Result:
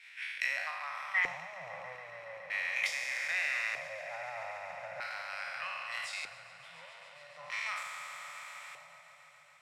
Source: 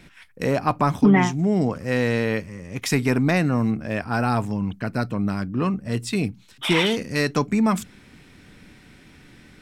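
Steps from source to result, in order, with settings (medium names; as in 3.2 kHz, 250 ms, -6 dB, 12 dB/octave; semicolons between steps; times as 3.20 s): spectral sustain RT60 2.50 s; Chebyshev band-stop 170–550 Hz, order 5; tilt EQ +4 dB/octave; compression 5:1, threshold -34 dBFS, peak gain reduction 21.5 dB; LFO band-pass square 0.4 Hz 480–2100 Hz; on a send: echo with a slow build-up 140 ms, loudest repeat 5, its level -16.5 dB; on the sum: three bands expanded up and down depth 70%; trim +4.5 dB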